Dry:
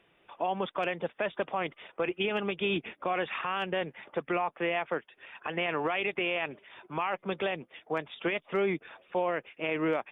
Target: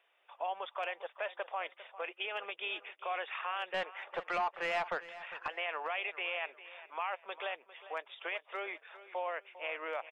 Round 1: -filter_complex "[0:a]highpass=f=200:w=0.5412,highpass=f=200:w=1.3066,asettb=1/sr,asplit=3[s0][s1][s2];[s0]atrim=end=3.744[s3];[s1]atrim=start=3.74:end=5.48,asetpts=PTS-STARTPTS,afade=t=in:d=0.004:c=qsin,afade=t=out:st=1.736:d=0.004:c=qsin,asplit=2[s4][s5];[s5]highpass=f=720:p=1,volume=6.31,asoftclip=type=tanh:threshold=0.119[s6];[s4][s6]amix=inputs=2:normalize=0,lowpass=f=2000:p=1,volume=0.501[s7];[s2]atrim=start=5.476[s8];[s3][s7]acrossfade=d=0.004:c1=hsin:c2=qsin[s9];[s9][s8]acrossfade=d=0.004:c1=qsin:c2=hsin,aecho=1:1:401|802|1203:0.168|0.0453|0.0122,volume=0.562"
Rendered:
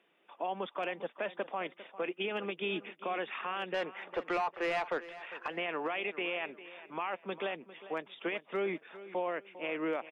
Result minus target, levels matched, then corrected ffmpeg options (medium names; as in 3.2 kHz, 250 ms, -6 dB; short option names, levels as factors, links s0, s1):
250 Hz band +14.0 dB
-filter_complex "[0:a]highpass=f=570:w=0.5412,highpass=f=570:w=1.3066,asettb=1/sr,asplit=3[s0][s1][s2];[s0]atrim=end=3.744[s3];[s1]atrim=start=3.74:end=5.48,asetpts=PTS-STARTPTS,afade=t=in:d=0.004:c=qsin,afade=t=out:st=1.736:d=0.004:c=qsin,asplit=2[s4][s5];[s5]highpass=f=720:p=1,volume=6.31,asoftclip=type=tanh:threshold=0.119[s6];[s4][s6]amix=inputs=2:normalize=0,lowpass=f=2000:p=1,volume=0.501[s7];[s2]atrim=start=5.476[s8];[s3][s7]acrossfade=d=0.004:c1=hsin:c2=qsin[s9];[s9][s8]acrossfade=d=0.004:c1=qsin:c2=hsin,aecho=1:1:401|802|1203:0.168|0.0453|0.0122,volume=0.562"